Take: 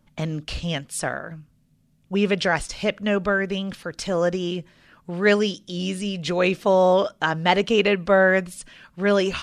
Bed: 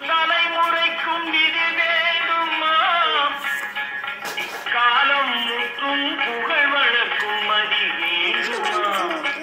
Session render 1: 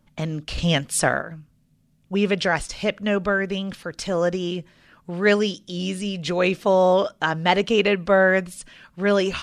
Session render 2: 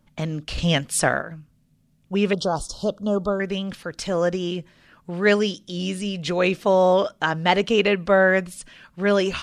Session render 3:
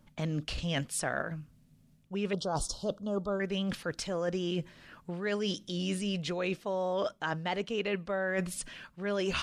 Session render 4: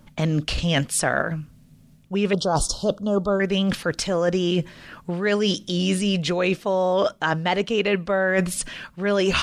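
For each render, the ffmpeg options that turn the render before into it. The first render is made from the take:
-filter_complex "[0:a]asplit=3[a][b][c];[a]atrim=end=0.582[d];[b]atrim=start=0.578:end=1.222,asetpts=PTS-STARTPTS,volume=6.5dB[e];[c]atrim=start=1.218[f];[d][e]acrossfade=d=0.004:c1=hsin:c2=hsin[g];[g][f]acrossfade=d=0.004:c1=hsin:c2=hsin"
-filter_complex "[0:a]asettb=1/sr,asplit=3[a][b][c];[a]atrim=end=2.334[d];[b]atrim=start=2.33:end=3.4,asetpts=PTS-STARTPTS,afade=t=in:d=0.004:c=qsin,afade=t=out:st=1.066:d=0.004:c=qsin,asuperstop=centerf=2100:order=8:qfactor=0.96[e];[c]atrim=start=3.396[f];[d][e]acrossfade=d=0.004:c1=hsin:c2=qsin[g];[g][f]acrossfade=d=0.004:c1=qsin:c2=hsin"
-af "alimiter=limit=-10dB:level=0:latency=1:release=372,areverse,acompressor=threshold=-29dB:ratio=10,areverse"
-af "volume=11dB"

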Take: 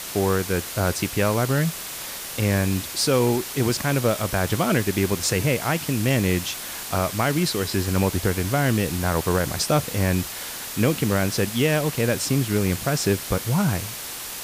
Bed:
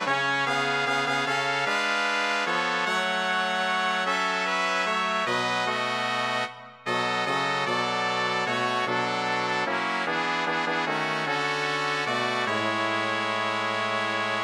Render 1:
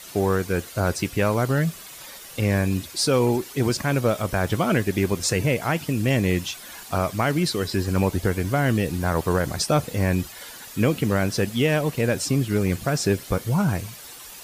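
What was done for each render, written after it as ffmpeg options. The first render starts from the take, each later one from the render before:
-af "afftdn=nr=11:nf=-34"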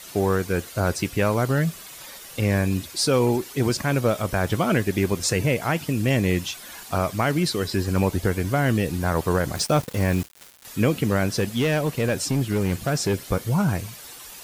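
-filter_complex "[0:a]asettb=1/sr,asplit=3[a][b][c];[a]atrim=end=9.554[d];[b]atrim=start=9.55:end=10.65,asetpts=PTS-STARTPTS,afade=t=in:d=0.004:c=qsin,afade=t=out:st=1.096:d=0.004:c=qsin,aeval=exprs='val(0)*gte(abs(val(0)),0.0251)':c=same[e];[c]atrim=start=10.646[f];[d][e]acrossfade=d=0.004:c1=hsin:c2=qsin[g];[g][f]acrossfade=d=0.004:c1=qsin:c2=hsin,asettb=1/sr,asplit=3[h][i][j];[h]atrim=end=11.404[k];[i]atrim=start=11.4:end=13.14,asetpts=PTS-STARTPTS,afade=t=in:d=0.004:c=qsin,afade=t=out:st=1.736:d=0.004:c=qsin,asoftclip=type=hard:threshold=-17dB[l];[j]atrim=start=13.136[m];[k][l]acrossfade=d=0.004:c1=hsin:c2=qsin[n];[n][m]acrossfade=d=0.004:c1=qsin:c2=hsin"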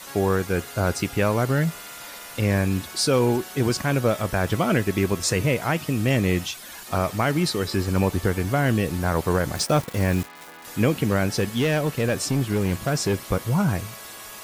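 -filter_complex "[1:a]volume=-18dB[a];[0:a][a]amix=inputs=2:normalize=0"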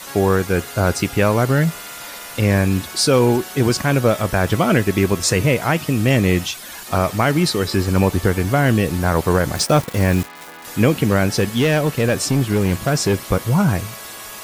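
-af "volume=5.5dB"

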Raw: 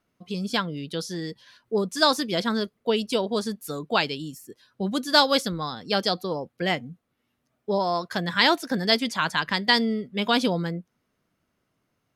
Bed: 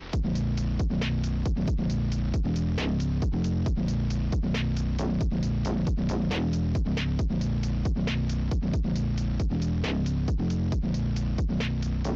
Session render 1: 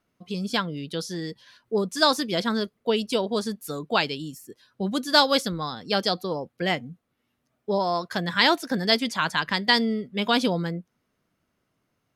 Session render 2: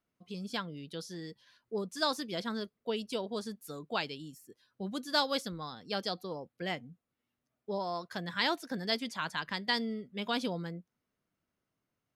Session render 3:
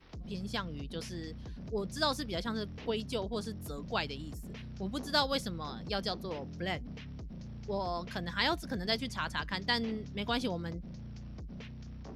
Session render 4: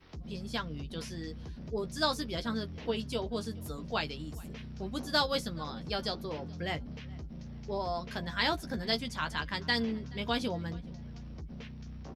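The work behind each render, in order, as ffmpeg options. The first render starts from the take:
-af anull
-af "volume=-11dB"
-filter_complex "[1:a]volume=-18dB[a];[0:a][a]amix=inputs=2:normalize=0"
-filter_complex "[0:a]asplit=2[a][b];[b]adelay=13,volume=-7dB[c];[a][c]amix=inputs=2:normalize=0,asplit=2[d][e];[e]adelay=427,lowpass=f=3.7k:p=1,volume=-23dB,asplit=2[f][g];[g]adelay=427,lowpass=f=3.7k:p=1,volume=0.39,asplit=2[h][i];[i]adelay=427,lowpass=f=3.7k:p=1,volume=0.39[j];[d][f][h][j]amix=inputs=4:normalize=0"

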